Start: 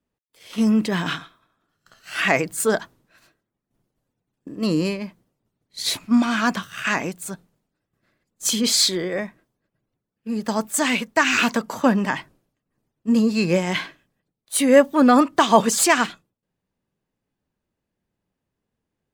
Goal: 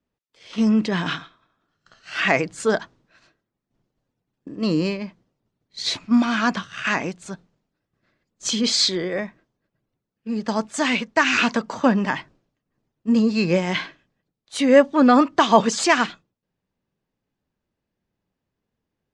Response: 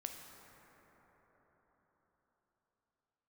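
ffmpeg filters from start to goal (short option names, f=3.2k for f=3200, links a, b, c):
-af "lowpass=f=6.4k:w=0.5412,lowpass=f=6.4k:w=1.3066"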